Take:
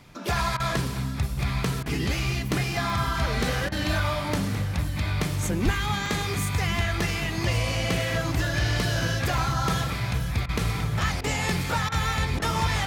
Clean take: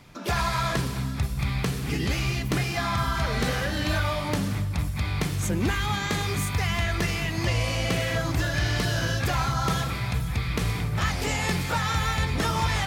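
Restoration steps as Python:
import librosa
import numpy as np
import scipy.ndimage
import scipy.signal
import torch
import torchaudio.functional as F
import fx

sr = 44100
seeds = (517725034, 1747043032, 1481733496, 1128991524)

y = fx.highpass(x, sr, hz=140.0, slope=24, at=(5.64, 5.76), fade=0.02)
y = fx.fix_interpolate(y, sr, at_s=(2.21, 2.9, 6.06, 9.38, 11.64), length_ms=1.0)
y = fx.fix_interpolate(y, sr, at_s=(0.57, 1.83, 3.69, 10.46, 11.21, 11.89, 12.39), length_ms=28.0)
y = fx.fix_echo_inverse(y, sr, delay_ms=1122, level_db=-13.0)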